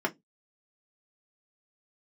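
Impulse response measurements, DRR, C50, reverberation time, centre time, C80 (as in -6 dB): 0.0 dB, 24.0 dB, 0.15 s, 6 ms, 37.0 dB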